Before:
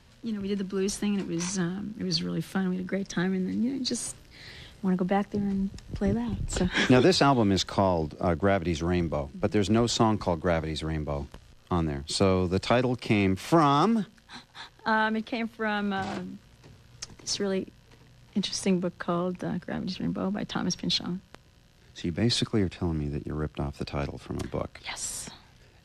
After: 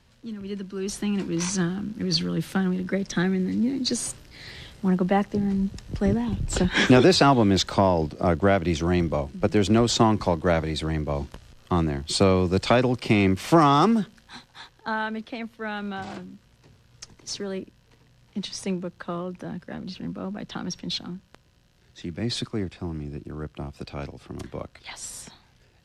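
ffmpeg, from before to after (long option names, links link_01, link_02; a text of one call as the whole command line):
ffmpeg -i in.wav -af "volume=4dB,afade=type=in:start_time=0.79:duration=0.52:silence=0.446684,afade=type=out:start_time=13.92:duration=0.97:silence=0.446684" out.wav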